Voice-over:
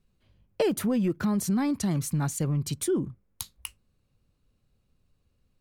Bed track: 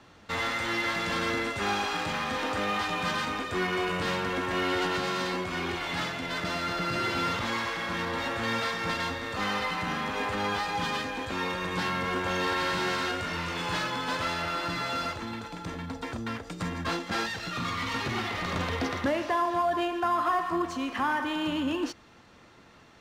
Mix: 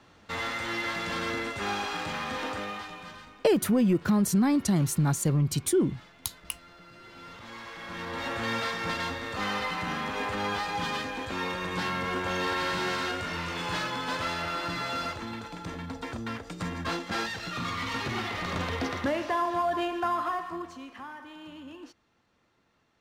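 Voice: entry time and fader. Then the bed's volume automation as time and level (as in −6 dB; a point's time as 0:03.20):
2.85 s, +2.5 dB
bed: 0:02.47 −2.5 dB
0:03.41 −21.5 dB
0:07.00 −21.5 dB
0:08.32 −1 dB
0:20.06 −1 dB
0:21.12 −15.5 dB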